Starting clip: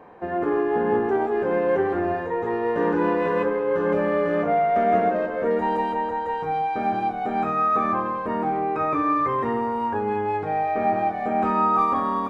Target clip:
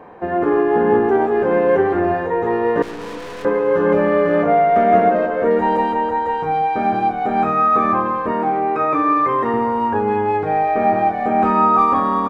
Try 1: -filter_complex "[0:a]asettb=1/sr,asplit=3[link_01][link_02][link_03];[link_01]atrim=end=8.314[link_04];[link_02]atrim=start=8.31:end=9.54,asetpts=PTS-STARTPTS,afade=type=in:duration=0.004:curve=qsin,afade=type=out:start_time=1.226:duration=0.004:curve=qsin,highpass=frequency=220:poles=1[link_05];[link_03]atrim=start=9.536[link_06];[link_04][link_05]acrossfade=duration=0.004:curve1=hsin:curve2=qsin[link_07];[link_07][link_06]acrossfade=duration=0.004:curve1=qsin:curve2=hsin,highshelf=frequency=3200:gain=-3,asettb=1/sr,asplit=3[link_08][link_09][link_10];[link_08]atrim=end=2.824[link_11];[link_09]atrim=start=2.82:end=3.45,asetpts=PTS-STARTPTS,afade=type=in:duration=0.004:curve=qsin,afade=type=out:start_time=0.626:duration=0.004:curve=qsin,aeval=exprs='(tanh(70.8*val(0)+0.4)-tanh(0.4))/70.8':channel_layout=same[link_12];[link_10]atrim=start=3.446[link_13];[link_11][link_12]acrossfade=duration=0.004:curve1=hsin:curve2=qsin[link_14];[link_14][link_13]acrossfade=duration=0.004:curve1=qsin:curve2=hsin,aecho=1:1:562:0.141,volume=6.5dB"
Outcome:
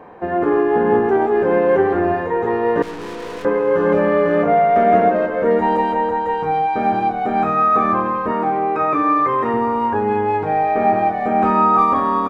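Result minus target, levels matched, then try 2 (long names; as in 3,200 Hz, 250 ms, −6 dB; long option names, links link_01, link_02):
echo 202 ms late
-filter_complex "[0:a]asettb=1/sr,asplit=3[link_01][link_02][link_03];[link_01]atrim=end=8.314[link_04];[link_02]atrim=start=8.31:end=9.54,asetpts=PTS-STARTPTS,afade=type=in:duration=0.004:curve=qsin,afade=type=out:start_time=1.226:duration=0.004:curve=qsin,highpass=frequency=220:poles=1[link_05];[link_03]atrim=start=9.536[link_06];[link_04][link_05]acrossfade=duration=0.004:curve1=hsin:curve2=qsin[link_07];[link_07][link_06]acrossfade=duration=0.004:curve1=qsin:curve2=hsin,highshelf=frequency=3200:gain=-3,asettb=1/sr,asplit=3[link_08][link_09][link_10];[link_08]atrim=end=2.824[link_11];[link_09]atrim=start=2.82:end=3.45,asetpts=PTS-STARTPTS,afade=type=in:duration=0.004:curve=qsin,afade=type=out:start_time=0.626:duration=0.004:curve=qsin,aeval=exprs='(tanh(70.8*val(0)+0.4)-tanh(0.4))/70.8':channel_layout=same[link_12];[link_10]atrim=start=3.446[link_13];[link_11][link_12]acrossfade=duration=0.004:curve1=hsin:curve2=qsin[link_14];[link_14][link_13]acrossfade=duration=0.004:curve1=qsin:curve2=hsin,aecho=1:1:360:0.141,volume=6.5dB"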